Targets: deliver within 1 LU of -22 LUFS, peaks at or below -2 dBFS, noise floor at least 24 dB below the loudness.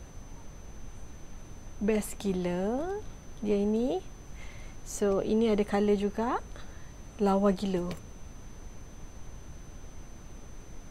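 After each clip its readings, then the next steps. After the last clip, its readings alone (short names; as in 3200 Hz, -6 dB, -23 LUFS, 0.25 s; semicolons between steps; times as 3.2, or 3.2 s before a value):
steady tone 6100 Hz; tone level -59 dBFS; noise floor -48 dBFS; noise floor target -54 dBFS; loudness -30.0 LUFS; peak -14.0 dBFS; loudness target -22.0 LUFS
-> notch 6100 Hz, Q 30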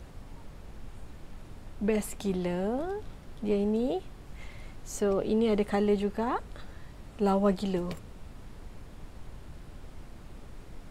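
steady tone none; noise floor -48 dBFS; noise floor target -54 dBFS
-> noise print and reduce 6 dB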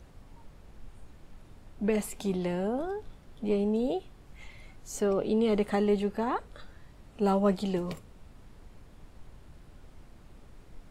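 noise floor -54 dBFS; loudness -30.0 LUFS; peak -14.0 dBFS; loudness target -22.0 LUFS
-> gain +8 dB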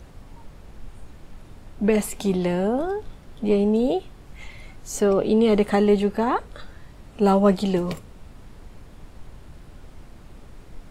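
loudness -22.0 LUFS; peak -6.0 dBFS; noise floor -46 dBFS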